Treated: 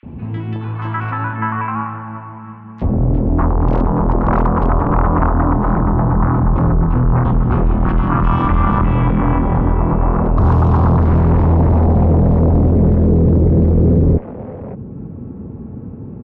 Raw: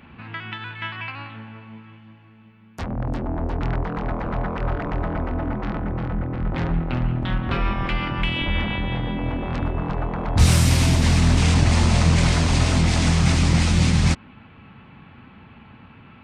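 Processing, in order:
low-shelf EQ 310 Hz +6 dB
in parallel at +0.5 dB: downward compressor 5 to 1, threshold −22 dBFS, peak gain reduction 15.5 dB
0:03.66–0:04.66: on the sum: wrap-around overflow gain 8.5 dB
tube saturation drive 17 dB, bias 0.5
low-pass filter sweep 1,100 Hz → 460 Hz, 0:10.47–0:12.63
three-band delay without the direct sound highs, lows, mids 30/600 ms, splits 630/2,600 Hz
level +7.5 dB

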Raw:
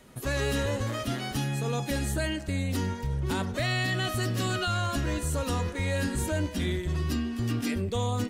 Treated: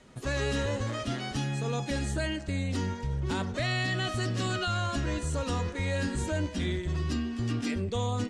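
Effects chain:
low-pass filter 8,200 Hz 24 dB per octave
level −1.5 dB

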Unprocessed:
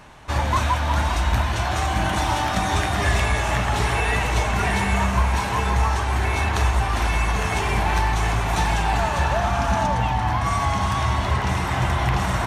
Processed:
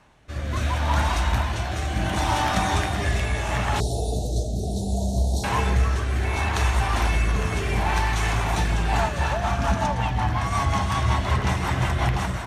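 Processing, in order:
rotating-speaker cabinet horn 0.7 Hz, later 5.5 Hz, at 0:08.56
automatic gain control gain up to 10 dB
0:03.80–0:05.44: Chebyshev band-stop filter 700–3,900 Hz, order 4
harmonic generator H 4 −34 dB, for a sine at −2 dBFS
level −7.5 dB

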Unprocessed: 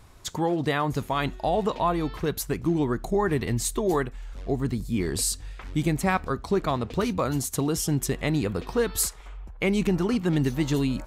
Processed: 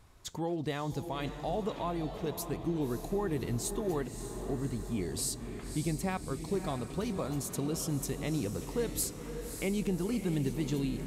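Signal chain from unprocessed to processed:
feedback delay with all-pass diffusion 584 ms, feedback 57%, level −9 dB
dynamic equaliser 1,400 Hz, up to −7 dB, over −42 dBFS, Q 0.97
level −8 dB

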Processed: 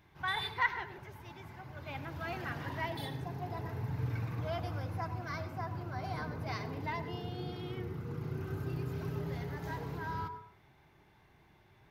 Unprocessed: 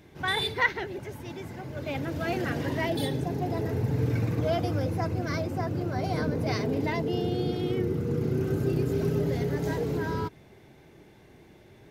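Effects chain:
octave-band graphic EQ 250/500/1,000/8,000 Hz −7/−9/+7/−8 dB
on a send: convolution reverb RT60 0.55 s, pre-delay 82 ms, DRR 11 dB
on the sum: level −7.5 dB

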